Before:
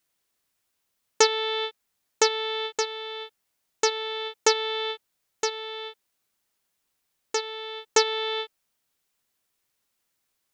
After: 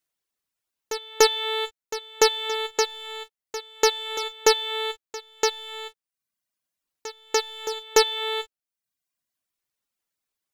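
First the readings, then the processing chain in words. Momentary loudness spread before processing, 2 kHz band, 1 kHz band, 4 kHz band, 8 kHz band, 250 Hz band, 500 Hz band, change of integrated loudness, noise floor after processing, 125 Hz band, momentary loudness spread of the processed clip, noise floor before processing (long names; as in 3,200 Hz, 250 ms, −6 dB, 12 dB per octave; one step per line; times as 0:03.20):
14 LU, +1.5 dB, +2.0 dB, +2.5 dB, +1.5 dB, +4.0 dB, +3.0 dB, +2.0 dB, below −85 dBFS, can't be measured, 17 LU, −77 dBFS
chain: leveller curve on the samples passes 2
reverb reduction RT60 0.83 s
echo ahead of the sound 292 ms −14 dB
level −2.5 dB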